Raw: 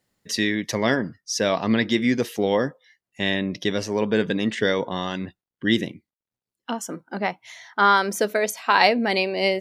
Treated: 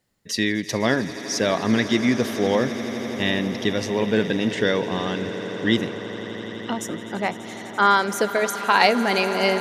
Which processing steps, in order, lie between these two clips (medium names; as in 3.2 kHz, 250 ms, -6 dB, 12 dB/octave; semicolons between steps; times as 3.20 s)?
bass shelf 91 Hz +5 dB; echo with a slow build-up 84 ms, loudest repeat 8, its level -18 dB